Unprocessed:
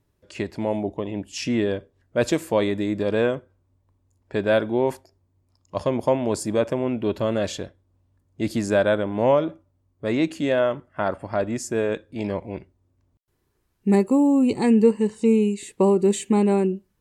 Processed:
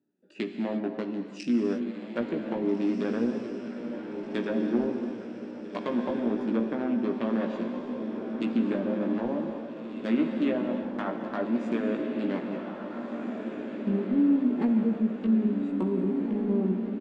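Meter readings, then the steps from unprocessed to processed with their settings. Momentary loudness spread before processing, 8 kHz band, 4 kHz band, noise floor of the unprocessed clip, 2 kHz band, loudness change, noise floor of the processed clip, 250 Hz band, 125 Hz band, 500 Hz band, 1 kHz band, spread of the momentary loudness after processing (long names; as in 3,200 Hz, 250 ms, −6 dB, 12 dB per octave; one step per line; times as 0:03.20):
12 LU, below −20 dB, −11.0 dB, −70 dBFS, −9.0 dB, −6.5 dB, −41 dBFS, −2.5 dB, −8.0 dB, −10.0 dB, −9.0 dB, 11 LU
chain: adaptive Wiener filter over 41 samples
Chebyshev band-pass filter 210–9,300 Hz, order 4
treble cut that deepens with the level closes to 310 Hz, closed at −16.5 dBFS
parametric band 510 Hz −12.5 dB 1.7 octaves
brickwall limiter −26 dBFS, peak gain reduction 9 dB
double-tracking delay 17 ms −5 dB
feedback delay with all-pass diffusion 1,749 ms, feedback 58%, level −6 dB
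reverb whose tail is shaped and stops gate 370 ms flat, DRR 6 dB
level +5.5 dB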